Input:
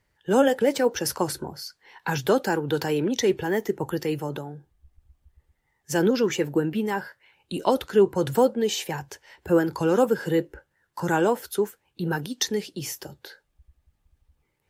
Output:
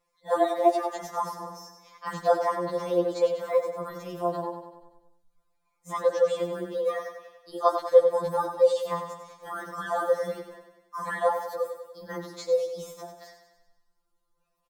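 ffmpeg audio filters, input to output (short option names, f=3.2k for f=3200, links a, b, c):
-filter_complex "[0:a]acrossover=split=3000[a][b];[b]acompressor=threshold=-47dB:ratio=4:attack=1:release=60[c];[a][c]amix=inputs=2:normalize=0,equalizer=f=125:t=o:w=1:g=-11,equalizer=f=250:t=o:w=1:g=-3,equalizer=f=500:t=o:w=1:g=6,equalizer=f=1k:t=o:w=1:g=7,equalizer=f=2k:t=o:w=1:g=-11,equalizer=f=4k:t=o:w=1:g=4,equalizer=f=8k:t=o:w=1:g=3,asetrate=52444,aresample=44100,atempo=0.840896,asplit=2[d][e];[e]aecho=0:1:96|192|288|384|480|576|672:0.376|0.207|0.114|0.0625|0.0344|0.0189|0.0104[f];[d][f]amix=inputs=2:normalize=0,afftfilt=real='re*2.83*eq(mod(b,8),0)':imag='im*2.83*eq(mod(b,8),0)':win_size=2048:overlap=0.75,volume=-2.5dB"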